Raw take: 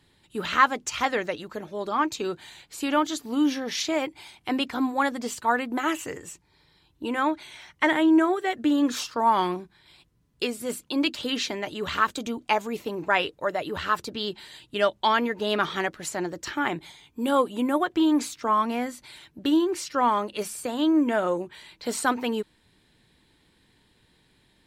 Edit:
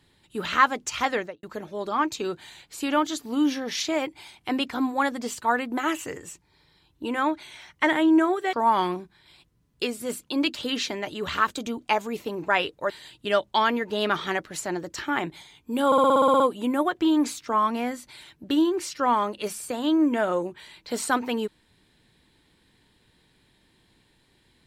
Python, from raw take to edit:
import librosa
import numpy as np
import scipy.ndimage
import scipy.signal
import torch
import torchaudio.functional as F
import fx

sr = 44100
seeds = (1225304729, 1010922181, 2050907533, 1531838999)

y = fx.studio_fade_out(x, sr, start_s=1.15, length_s=0.28)
y = fx.edit(y, sr, fx.cut(start_s=8.53, length_s=0.6),
    fx.cut(start_s=13.5, length_s=0.89),
    fx.stutter(start_s=17.35, slice_s=0.06, count=10), tone=tone)